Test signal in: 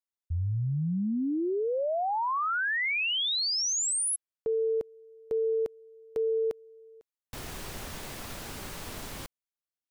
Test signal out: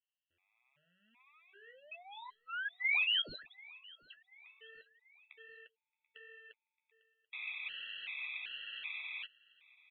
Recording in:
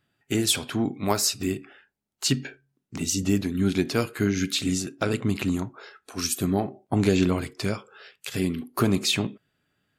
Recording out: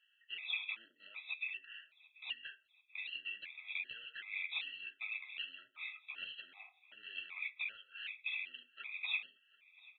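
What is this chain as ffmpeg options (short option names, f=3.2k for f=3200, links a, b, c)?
-filter_complex "[0:a]alimiter=limit=-19dB:level=0:latency=1:release=378,acompressor=threshold=-32dB:ratio=6:attack=0.1:release=33:knee=6:detection=peak,aeval=exprs='0.0299*(cos(1*acos(clip(val(0)/0.0299,-1,1)))-cos(1*PI/2))+0.00188*(cos(4*acos(clip(val(0)/0.0299,-1,1)))-cos(4*PI/2))':c=same,highpass=f=2.5k:t=q:w=6.3,aresample=11025,asoftclip=type=tanh:threshold=-29.5dB,aresample=44100,flanger=delay=7.6:depth=6.2:regen=-38:speed=1.4:shape=sinusoidal,asplit=2[a][b];[b]aecho=0:1:736|1472|2208:0.0708|0.0361|0.0184[c];[a][c]amix=inputs=2:normalize=0,aresample=8000,aresample=44100,afftfilt=real='re*gt(sin(2*PI*1.3*pts/sr)*(1-2*mod(floor(b*sr/1024/660),2)),0)':imag='im*gt(sin(2*PI*1.3*pts/sr)*(1-2*mod(floor(b*sr/1024/660),2)),0)':win_size=1024:overlap=0.75,volume=4dB"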